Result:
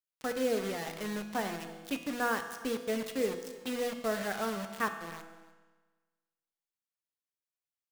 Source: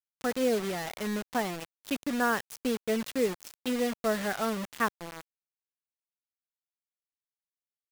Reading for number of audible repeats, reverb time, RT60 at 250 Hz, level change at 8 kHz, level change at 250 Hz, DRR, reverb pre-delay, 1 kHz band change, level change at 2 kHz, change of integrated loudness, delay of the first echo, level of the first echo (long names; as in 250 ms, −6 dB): 1, 1.3 s, 1.3 s, −3.5 dB, −5.0 dB, 6.0 dB, 6 ms, −3.0 dB, −3.0 dB, −3.5 dB, 296 ms, −20.0 dB